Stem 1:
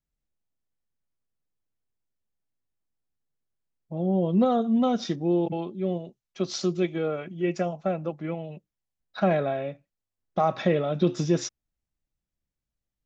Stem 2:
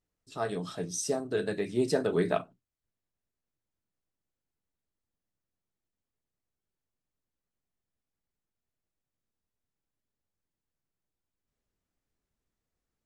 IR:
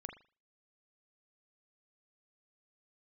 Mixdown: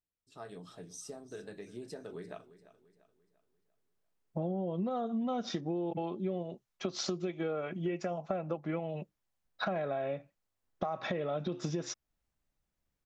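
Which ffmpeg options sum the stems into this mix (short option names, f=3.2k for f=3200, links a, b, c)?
-filter_complex "[0:a]equalizer=f=960:w=0.52:g=5.5,alimiter=limit=-18dB:level=0:latency=1:release=363,adelay=450,volume=1.5dB[a];[1:a]acompressor=threshold=-28dB:ratio=6,volume=-12.5dB,asplit=2[b][c];[c]volume=-16.5dB,aecho=0:1:344|688|1032|1376|1720|2064:1|0.42|0.176|0.0741|0.0311|0.0131[d];[a][b][d]amix=inputs=3:normalize=0,acompressor=threshold=-31dB:ratio=10"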